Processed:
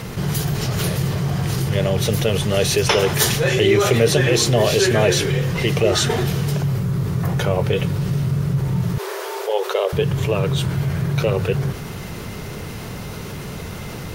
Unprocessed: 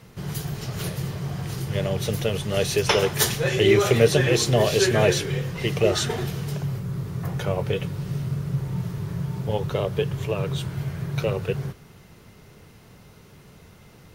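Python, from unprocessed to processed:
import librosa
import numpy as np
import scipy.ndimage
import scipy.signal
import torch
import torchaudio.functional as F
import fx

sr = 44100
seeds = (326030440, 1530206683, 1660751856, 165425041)

y = fx.brickwall_highpass(x, sr, low_hz=350.0, at=(8.98, 9.93))
y = fx.env_flatten(y, sr, amount_pct=50)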